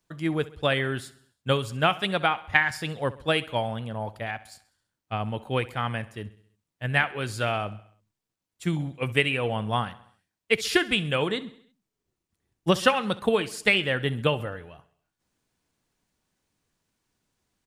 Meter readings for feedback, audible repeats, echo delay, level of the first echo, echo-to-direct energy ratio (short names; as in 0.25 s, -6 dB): 54%, 4, 66 ms, -18.5 dB, -17.0 dB